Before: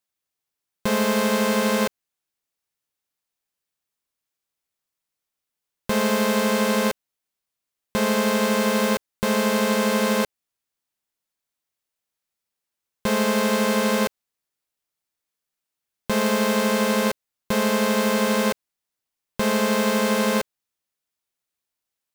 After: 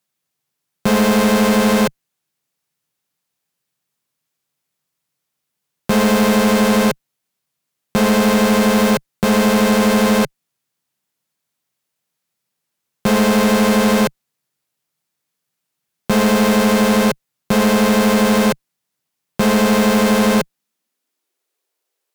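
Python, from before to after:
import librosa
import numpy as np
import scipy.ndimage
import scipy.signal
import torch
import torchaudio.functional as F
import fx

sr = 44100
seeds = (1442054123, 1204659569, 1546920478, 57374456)

y = fx.filter_sweep_highpass(x, sr, from_hz=140.0, to_hz=410.0, start_s=20.3, end_s=21.53, q=2.9)
y = fx.clip_asym(y, sr, top_db=-21.5, bottom_db=-13.5)
y = y * librosa.db_to_amplitude(7.0)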